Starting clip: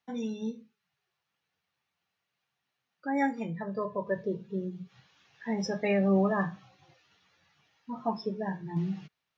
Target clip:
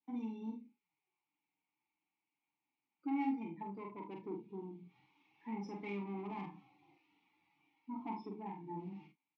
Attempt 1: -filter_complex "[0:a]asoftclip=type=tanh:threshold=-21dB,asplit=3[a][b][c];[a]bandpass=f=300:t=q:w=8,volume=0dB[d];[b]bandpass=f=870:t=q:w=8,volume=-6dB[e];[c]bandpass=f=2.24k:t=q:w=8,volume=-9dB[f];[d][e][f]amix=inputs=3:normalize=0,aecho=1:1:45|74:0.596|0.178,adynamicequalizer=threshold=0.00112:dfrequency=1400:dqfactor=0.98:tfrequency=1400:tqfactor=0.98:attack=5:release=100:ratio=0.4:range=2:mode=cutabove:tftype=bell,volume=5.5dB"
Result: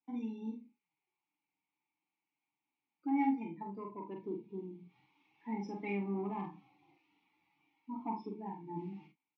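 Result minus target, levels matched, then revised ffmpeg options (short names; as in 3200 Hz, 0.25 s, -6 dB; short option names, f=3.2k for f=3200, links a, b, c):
soft clip: distortion -9 dB
-filter_complex "[0:a]asoftclip=type=tanh:threshold=-30.5dB,asplit=3[a][b][c];[a]bandpass=f=300:t=q:w=8,volume=0dB[d];[b]bandpass=f=870:t=q:w=8,volume=-6dB[e];[c]bandpass=f=2.24k:t=q:w=8,volume=-9dB[f];[d][e][f]amix=inputs=3:normalize=0,aecho=1:1:45|74:0.596|0.178,adynamicequalizer=threshold=0.00112:dfrequency=1400:dqfactor=0.98:tfrequency=1400:tqfactor=0.98:attack=5:release=100:ratio=0.4:range=2:mode=cutabove:tftype=bell,volume=5.5dB"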